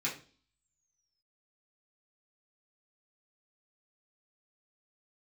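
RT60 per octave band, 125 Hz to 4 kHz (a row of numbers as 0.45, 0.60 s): 0.55, 0.55, 0.45, 0.35, 0.35, 0.50 s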